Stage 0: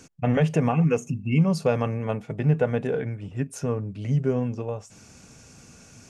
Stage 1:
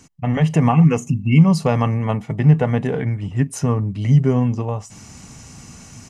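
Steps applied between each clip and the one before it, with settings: comb 1 ms, depth 47%; AGC gain up to 8 dB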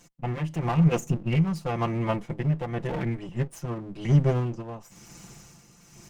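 minimum comb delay 5.8 ms; tremolo 0.96 Hz, depth 64%; gain -5 dB

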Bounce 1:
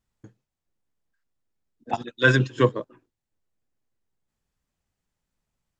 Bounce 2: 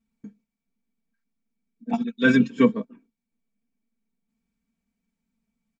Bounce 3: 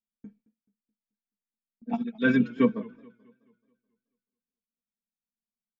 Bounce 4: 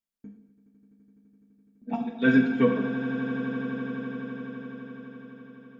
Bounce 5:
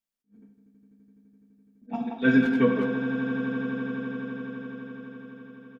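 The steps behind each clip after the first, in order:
comb 4.4 ms, depth 87%; small resonant body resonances 220/2300 Hz, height 18 dB, ringing for 50 ms; gain -7.5 dB
gate with hold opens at -47 dBFS; air absorption 170 m; warbling echo 0.215 s, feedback 45%, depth 118 cents, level -23.5 dB; gain -4 dB
swelling echo 84 ms, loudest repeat 8, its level -16.5 dB; non-linear reverb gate 0.28 s falling, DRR 3 dB
speakerphone echo 0.18 s, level -7 dB; attack slew limiter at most 320 dB/s

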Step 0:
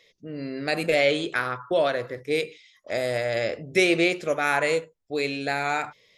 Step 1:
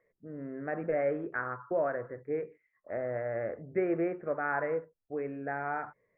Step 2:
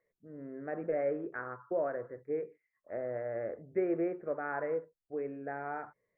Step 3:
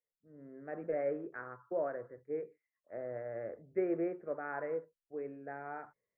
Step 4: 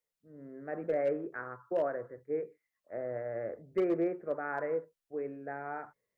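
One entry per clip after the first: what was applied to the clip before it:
steep low-pass 1800 Hz 48 dB/oct; gain -7.5 dB
dynamic EQ 410 Hz, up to +6 dB, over -43 dBFS, Q 0.84; gain -7 dB
three-band expander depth 40%; gain -3.5 dB
overloaded stage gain 27.5 dB; gain +4 dB

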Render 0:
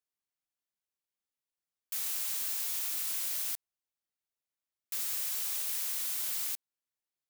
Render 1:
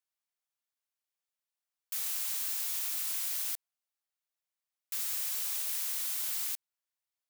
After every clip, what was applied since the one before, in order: HPF 570 Hz 24 dB/oct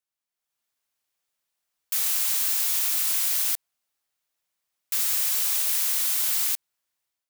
AGC gain up to 10 dB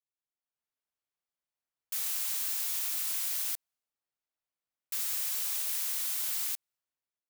mismatched tape noise reduction decoder only; gain -8.5 dB

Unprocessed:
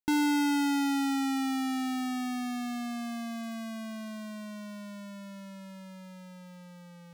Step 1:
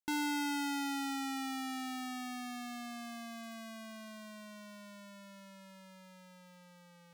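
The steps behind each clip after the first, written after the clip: low shelf 400 Hz -9.5 dB; gain -4 dB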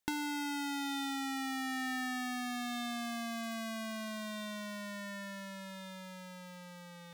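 compressor 6:1, threshold -43 dBFS, peak gain reduction 11.5 dB; small resonant body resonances 1800/3600 Hz, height 10 dB, ringing for 35 ms; gain +8.5 dB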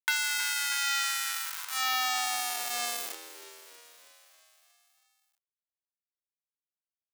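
bit-crush 5-bit; frequency-shifting echo 0.319 s, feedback 63%, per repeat +78 Hz, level -15 dB; high-pass sweep 1500 Hz -> 180 Hz, 1.29–4.49; gain +6 dB

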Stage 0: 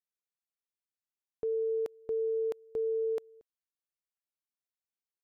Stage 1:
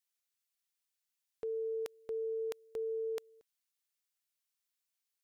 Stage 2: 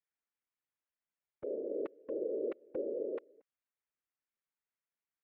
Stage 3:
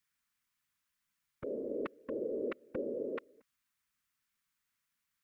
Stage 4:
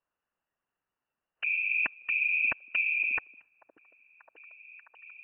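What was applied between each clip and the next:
tilt shelf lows -8.5 dB, about 1100 Hz
LPF 2200 Hz 24 dB/oct; vocal rider; whisperiser; gain +1 dB
band shelf 510 Hz -12 dB; gain +11 dB
inverted band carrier 2900 Hz; spectral noise reduction 9 dB; delay with a stepping band-pass 0.587 s, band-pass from 270 Hz, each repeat 0.7 oct, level -9.5 dB; gain +9 dB

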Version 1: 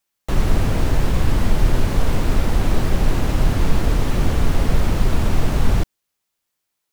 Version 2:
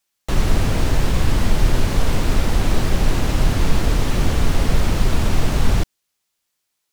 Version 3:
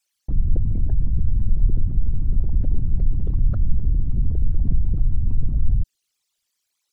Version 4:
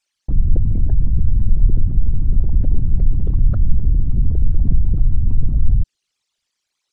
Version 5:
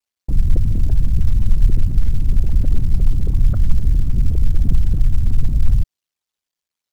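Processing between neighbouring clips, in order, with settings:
bell 5400 Hz +4.5 dB 2.7 oct
formant sharpening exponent 3; gain -1 dB
air absorption 68 m; gain +4.5 dB
G.711 law mismatch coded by A

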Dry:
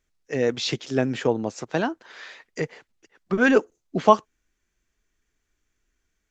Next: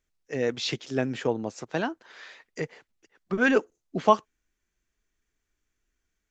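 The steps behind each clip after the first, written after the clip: dynamic EQ 2400 Hz, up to +3 dB, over -31 dBFS, Q 0.79; gain -4.5 dB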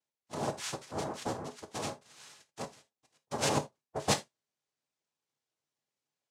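one diode to ground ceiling -18 dBFS; noise vocoder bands 2; non-linear reverb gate 0.1 s falling, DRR 8 dB; gain -8 dB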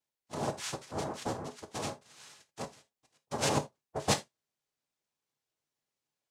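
low shelf 63 Hz +6.5 dB

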